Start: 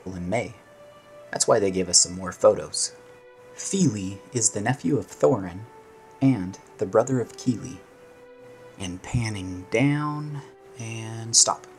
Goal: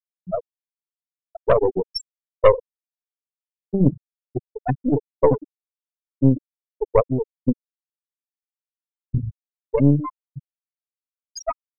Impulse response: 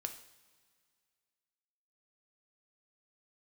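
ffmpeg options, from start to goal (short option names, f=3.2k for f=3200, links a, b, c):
-filter_complex "[0:a]asplit=2[a][b];[1:a]atrim=start_sample=2205,lowpass=4.5k[c];[b][c]afir=irnorm=-1:irlink=0,volume=5.5dB[d];[a][d]amix=inputs=2:normalize=0,afftfilt=real='re*gte(hypot(re,im),1)':imag='im*gte(hypot(re,im),1)':win_size=1024:overlap=0.75,aeval=exprs='1.26*(cos(1*acos(clip(val(0)/1.26,-1,1)))-cos(1*PI/2))+0.251*(cos(4*acos(clip(val(0)/1.26,-1,1)))-cos(4*PI/2))+0.0158*(cos(5*acos(clip(val(0)/1.26,-1,1)))-cos(5*PI/2))':c=same,volume=-4.5dB"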